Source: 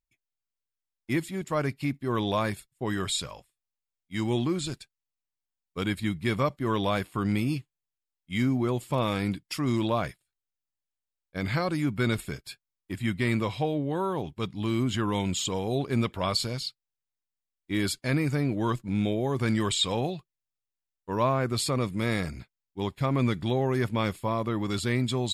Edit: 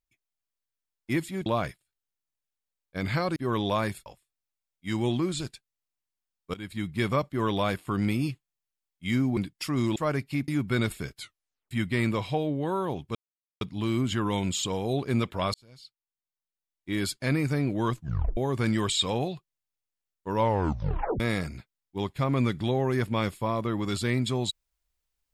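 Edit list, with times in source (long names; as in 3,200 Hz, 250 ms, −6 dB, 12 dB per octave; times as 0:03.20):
0:01.46–0:01.98: swap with 0:09.86–0:11.76
0:02.68–0:03.33: remove
0:05.81–0:06.23: fade in, from −18 dB
0:08.64–0:09.27: remove
0:12.46: tape stop 0.53 s
0:14.43: splice in silence 0.46 s
0:16.36–0:18.09: fade in
0:18.77: tape stop 0.42 s
0:21.17: tape stop 0.85 s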